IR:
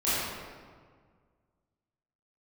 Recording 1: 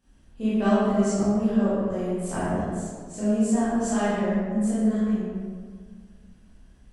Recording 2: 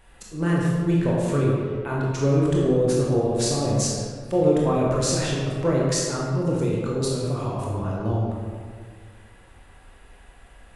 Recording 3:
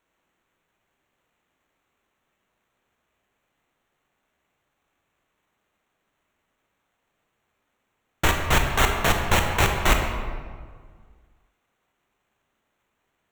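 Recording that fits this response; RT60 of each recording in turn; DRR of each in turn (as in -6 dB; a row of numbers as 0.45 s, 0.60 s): 1; 1.7 s, 1.7 s, 1.7 s; -13.0 dB, -4.5 dB, 3.0 dB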